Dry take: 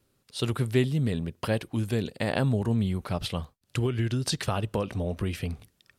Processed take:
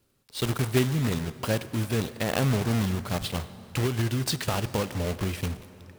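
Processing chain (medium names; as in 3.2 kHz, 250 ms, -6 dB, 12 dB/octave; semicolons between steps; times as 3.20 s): block-companded coder 3-bit; plate-style reverb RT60 3.7 s, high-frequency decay 0.65×, DRR 14 dB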